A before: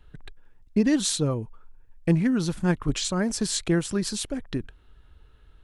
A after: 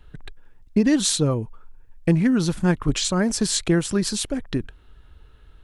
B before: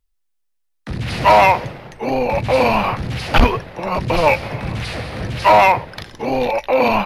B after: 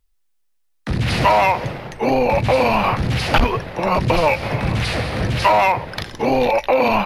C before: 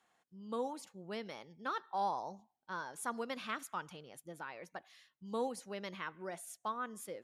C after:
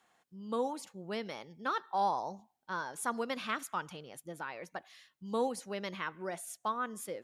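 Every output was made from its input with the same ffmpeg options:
ffmpeg -i in.wav -af "acompressor=threshold=-17dB:ratio=6,volume=4.5dB" out.wav

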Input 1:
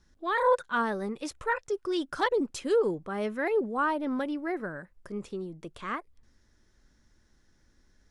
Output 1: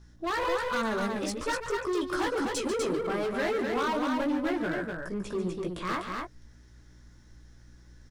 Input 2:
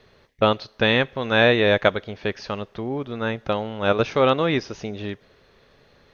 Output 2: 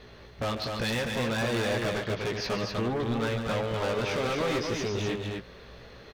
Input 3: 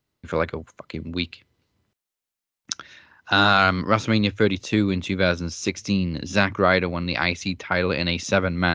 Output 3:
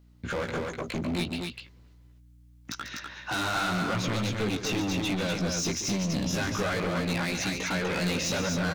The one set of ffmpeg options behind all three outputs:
ffmpeg -i in.wav -af "acontrast=88,alimiter=limit=-8dB:level=0:latency=1:release=105,acompressor=threshold=-22dB:ratio=2.5,flanger=delay=16:depth=2.1:speed=2.7,aeval=exprs='val(0)+0.00158*(sin(2*PI*60*n/s)+sin(2*PI*2*60*n/s)/2+sin(2*PI*3*60*n/s)/3+sin(2*PI*4*60*n/s)/4+sin(2*PI*5*60*n/s)/5)':channel_layout=same,asoftclip=type=hard:threshold=-28.5dB,aecho=1:1:142.9|247.8:0.316|0.631,volume=1dB" out.wav

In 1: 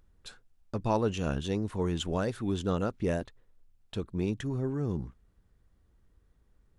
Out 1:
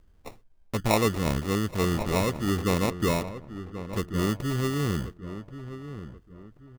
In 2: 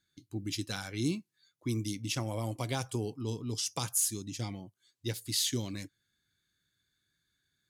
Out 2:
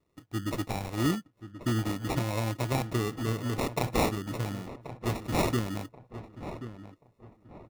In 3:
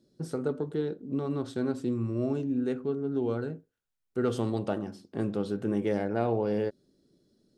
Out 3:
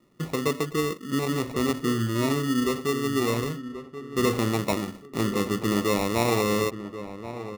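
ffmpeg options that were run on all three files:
ffmpeg -i in.wav -filter_complex "[0:a]acrusher=samples=28:mix=1:aa=0.000001,asplit=2[link_01][link_02];[link_02]adelay=1082,lowpass=frequency=1700:poles=1,volume=-11.5dB,asplit=2[link_03][link_04];[link_04]adelay=1082,lowpass=frequency=1700:poles=1,volume=0.33,asplit=2[link_05][link_06];[link_06]adelay=1082,lowpass=frequency=1700:poles=1,volume=0.33[link_07];[link_01][link_03][link_05][link_07]amix=inputs=4:normalize=0,volume=4.5dB" out.wav

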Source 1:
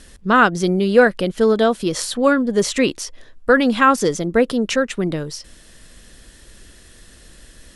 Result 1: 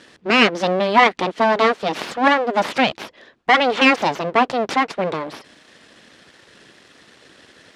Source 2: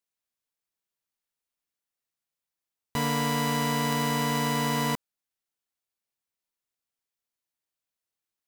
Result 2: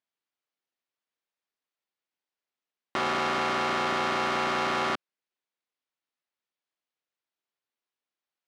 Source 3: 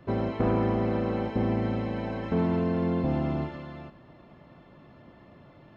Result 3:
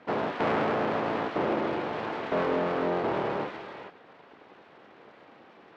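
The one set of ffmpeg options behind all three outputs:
ffmpeg -i in.wav -af "aeval=exprs='abs(val(0))':channel_layout=same,highpass=230,lowpass=4000,volume=5dB" out.wav

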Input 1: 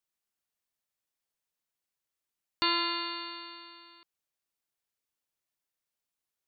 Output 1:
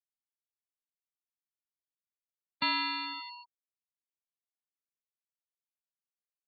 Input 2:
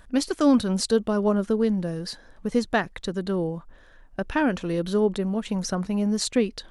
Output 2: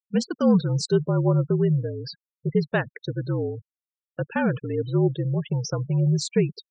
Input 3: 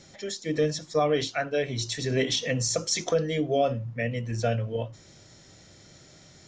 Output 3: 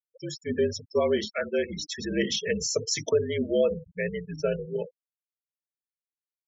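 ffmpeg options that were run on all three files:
ffmpeg -i in.wav -af "afreqshift=-56,highpass=frequency=110:width=0.5412,highpass=frequency=110:width=1.3066,equalizer=frequency=150:width_type=q:width=4:gain=4,equalizer=frequency=300:width_type=q:width=4:gain=-5,equalizer=frequency=480:width_type=q:width=4:gain=4,equalizer=frequency=720:width_type=q:width=4:gain=-5,equalizer=frequency=1200:width_type=q:width=4:gain=-4,equalizer=frequency=3900:width_type=q:width=4:gain=-4,lowpass=frequency=7900:width=0.5412,lowpass=frequency=7900:width=1.3066,afftfilt=real='re*gte(hypot(re,im),0.0282)':imag='im*gte(hypot(re,im),0.0282)':win_size=1024:overlap=0.75" out.wav

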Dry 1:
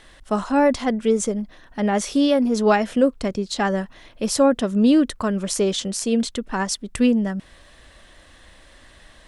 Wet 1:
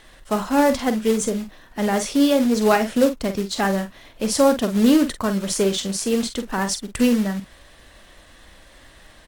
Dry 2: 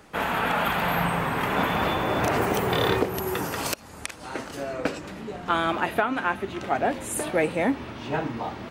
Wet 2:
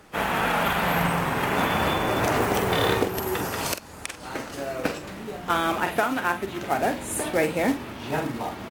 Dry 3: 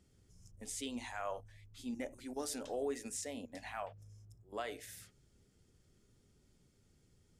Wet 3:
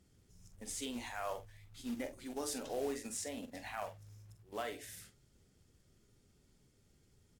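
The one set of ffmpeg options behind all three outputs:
ffmpeg -i in.wav -filter_complex "[0:a]acrusher=bits=4:mode=log:mix=0:aa=0.000001,asplit=2[link_01][link_02];[link_02]adelay=46,volume=-9.5dB[link_03];[link_01][link_03]amix=inputs=2:normalize=0" -ar 48000 -c:a aac -b:a 64k out.aac

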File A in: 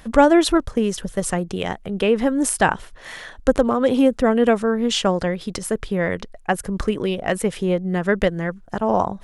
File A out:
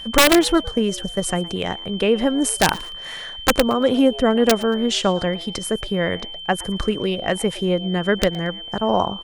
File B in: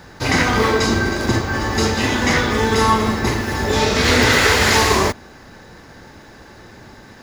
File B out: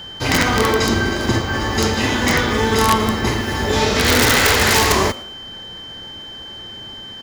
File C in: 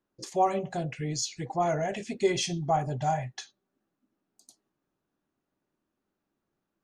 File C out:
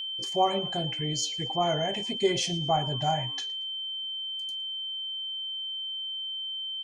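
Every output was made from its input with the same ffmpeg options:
ffmpeg -i in.wav -filter_complex "[0:a]aeval=exprs='(mod(1.88*val(0)+1,2)-1)/1.88':channel_layout=same,asplit=3[link_01][link_02][link_03];[link_02]adelay=114,afreqshift=150,volume=-21.5dB[link_04];[link_03]adelay=228,afreqshift=300,volume=-31.7dB[link_05];[link_01][link_04][link_05]amix=inputs=3:normalize=0,aeval=exprs='val(0)+0.0251*sin(2*PI*3100*n/s)':channel_layout=same" out.wav

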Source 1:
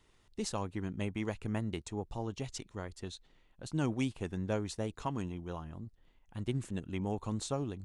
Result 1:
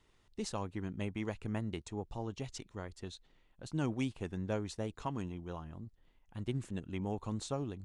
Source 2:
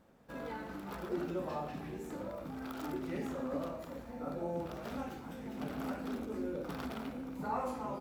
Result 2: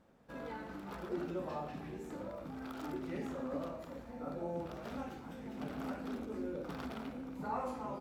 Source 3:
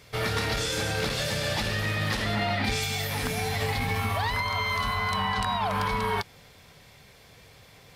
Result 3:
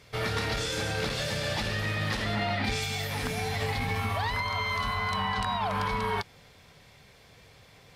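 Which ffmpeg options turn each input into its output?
ffmpeg -i in.wav -af "highshelf=frequency=11000:gain=-8.5,volume=-2dB" out.wav

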